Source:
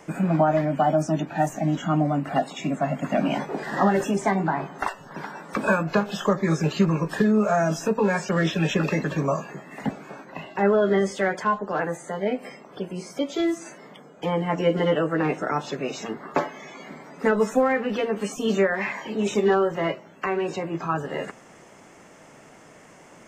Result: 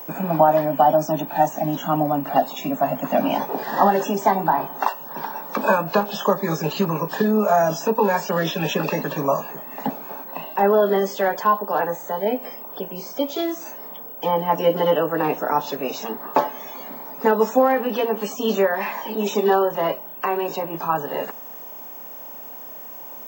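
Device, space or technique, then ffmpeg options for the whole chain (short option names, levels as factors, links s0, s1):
old television with a line whistle: -af "highpass=f=180:w=0.5412,highpass=f=180:w=1.3066,equalizer=f=190:t=q:w=4:g=-6,equalizer=f=340:t=q:w=4:g=-7,equalizer=f=900:t=q:w=4:g=6,equalizer=f=1400:t=q:w=4:g=-5,equalizer=f=2100:t=q:w=4:g=-10,lowpass=f=6800:w=0.5412,lowpass=f=6800:w=1.3066,aeval=exprs='val(0)+0.0112*sin(2*PI*15734*n/s)':c=same,volume=1.68"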